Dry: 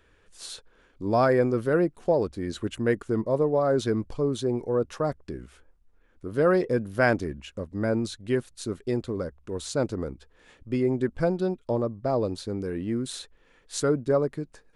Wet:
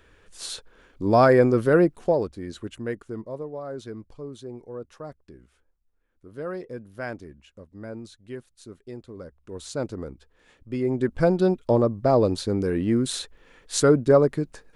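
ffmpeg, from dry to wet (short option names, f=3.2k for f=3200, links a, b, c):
-af "volume=23dB,afade=t=out:st=1.85:d=0.47:silence=0.398107,afade=t=out:st=2.32:d=1.17:silence=0.375837,afade=t=in:st=9.08:d=0.64:silence=0.375837,afade=t=in:st=10.73:d=0.75:silence=0.334965"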